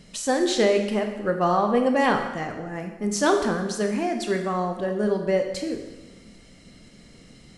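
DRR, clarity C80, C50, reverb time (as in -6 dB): 4.0 dB, 8.5 dB, 6.5 dB, 1.1 s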